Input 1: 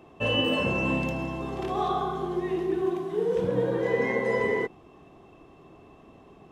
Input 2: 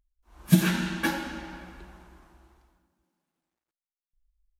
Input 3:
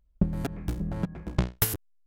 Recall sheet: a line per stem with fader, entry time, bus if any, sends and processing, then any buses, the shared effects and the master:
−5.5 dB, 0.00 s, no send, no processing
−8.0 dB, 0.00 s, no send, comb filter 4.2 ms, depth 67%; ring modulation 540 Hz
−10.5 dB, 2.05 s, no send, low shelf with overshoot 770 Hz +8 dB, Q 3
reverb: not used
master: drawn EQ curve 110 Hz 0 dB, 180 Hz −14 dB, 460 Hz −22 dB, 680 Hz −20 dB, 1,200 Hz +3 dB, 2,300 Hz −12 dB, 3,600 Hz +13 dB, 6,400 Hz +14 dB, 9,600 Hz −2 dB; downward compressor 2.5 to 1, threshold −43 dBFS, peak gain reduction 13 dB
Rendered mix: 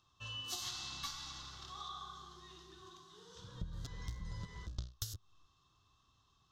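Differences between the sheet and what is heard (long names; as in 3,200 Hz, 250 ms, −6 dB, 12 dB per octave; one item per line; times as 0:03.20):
stem 1 −5.5 dB → −14.5 dB
stem 3: entry 2.05 s → 3.40 s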